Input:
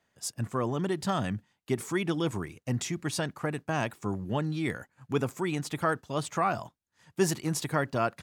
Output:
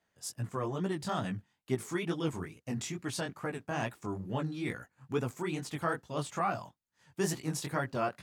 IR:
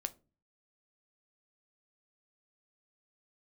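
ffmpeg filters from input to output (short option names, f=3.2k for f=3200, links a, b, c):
-af "flanger=delay=15.5:depth=7.9:speed=2.3,volume=-1.5dB"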